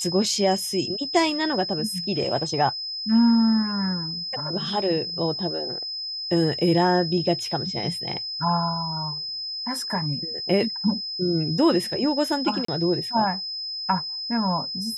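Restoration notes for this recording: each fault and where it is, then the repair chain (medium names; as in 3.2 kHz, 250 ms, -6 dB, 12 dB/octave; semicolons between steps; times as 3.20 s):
whine 5.1 kHz -29 dBFS
12.65–12.68 s: dropout 34 ms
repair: band-stop 5.1 kHz, Q 30; interpolate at 12.65 s, 34 ms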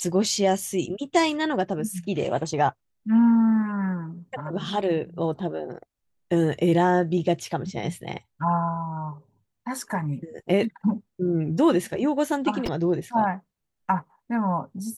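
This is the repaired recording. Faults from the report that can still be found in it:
nothing left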